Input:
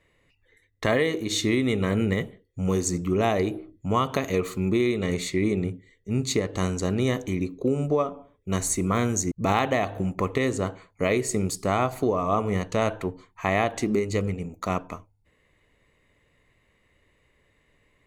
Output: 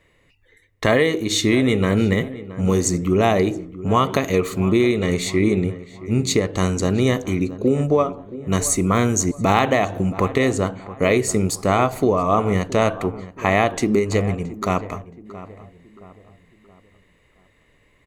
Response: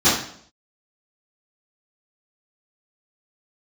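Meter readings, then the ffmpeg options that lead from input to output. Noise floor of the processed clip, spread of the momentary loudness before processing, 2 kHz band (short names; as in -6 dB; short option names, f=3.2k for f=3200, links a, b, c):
-59 dBFS, 8 LU, +6.0 dB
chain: -filter_complex "[0:a]asplit=2[a][b];[b]adelay=673,lowpass=f=1.8k:p=1,volume=-15.5dB,asplit=2[c][d];[d]adelay=673,lowpass=f=1.8k:p=1,volume=0.43,asplit=2[e][f];[f]adelay=673,lowpass=f=1.8k:p=1,volume=0.43,asplit=2[g][h];[h]adelay=673,lowpass=f=1.8k:p=1,volume=0.43[i];[a][c][e][g][i]amix=inputs=5:normalize=0,volume=6dB"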